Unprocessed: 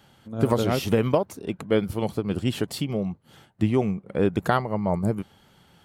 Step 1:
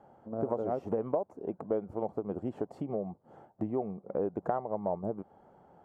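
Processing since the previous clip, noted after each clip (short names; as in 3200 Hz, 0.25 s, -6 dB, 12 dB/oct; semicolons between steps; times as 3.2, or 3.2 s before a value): EQ curve 120 Hz 0 dB, 730 Hz +13 dB, 3600 Hz -26 dB, 7300 Hz -19 dB, 11000 Hz -29 dB; compressor 2.5:1, threshold -27 dBFS, peak gain reduction 14 dB; low shelf 250 Hz -4.5 dB; gain -5.5 dB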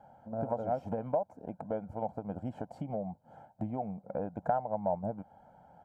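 comb 1.3 ms, depth 81%; gain -2 dB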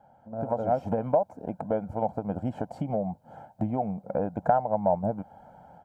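AGC gain up to 9 dB; gain -1.5 dB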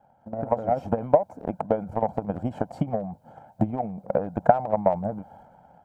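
transient shaper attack +12 dB, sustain +8 dB; gain -4.5 dB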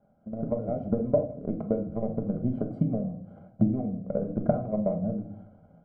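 running mean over 50 samples; shoebox room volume 600 m³, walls furnished, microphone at 1.3 m; mismatched tape noise reduction encoder only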